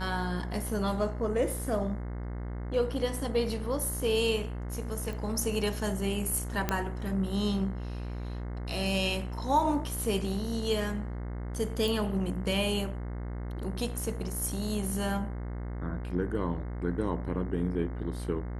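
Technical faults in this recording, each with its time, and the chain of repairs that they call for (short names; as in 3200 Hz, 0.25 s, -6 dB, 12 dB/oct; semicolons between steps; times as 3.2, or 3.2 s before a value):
buzz 60 Hz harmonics 36 -36 dBFS
5.13 pop
6.69 pop -12 dBFS
11.88 pop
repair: de-click; de-hum 60 Hz, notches 36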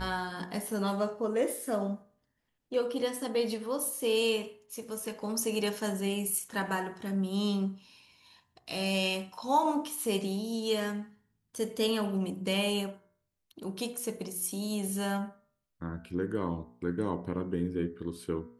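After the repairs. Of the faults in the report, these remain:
none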